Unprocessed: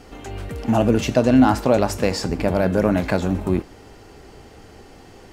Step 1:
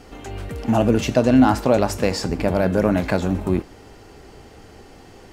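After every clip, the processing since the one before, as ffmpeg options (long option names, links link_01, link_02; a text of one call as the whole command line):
ffmpeg -i in.wav -af anull out.wav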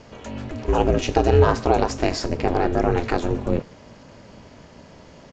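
ffmpeg -i in.wav -af "aeval=exprs='val(0)*sin(2*PI*170*n/s)':channel_layout=same,aresample=16000,aresample=44100,volume=1.5dB" out.wav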